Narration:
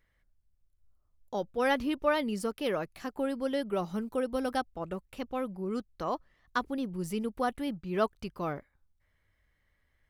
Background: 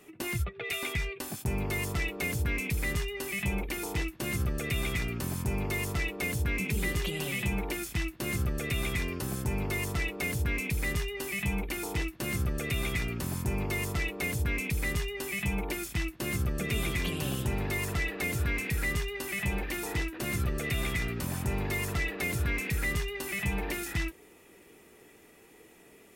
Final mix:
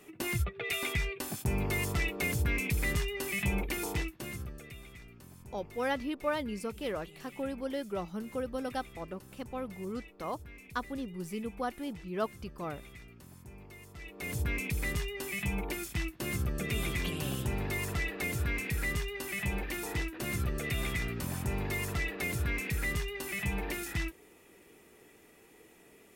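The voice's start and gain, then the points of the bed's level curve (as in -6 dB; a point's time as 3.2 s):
4.20 s, -4.5 dB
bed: 3.89 s 0 dB
4.86 s -19.5 dB
13.91 s -19.5 dB
14.37 s -2.5 dB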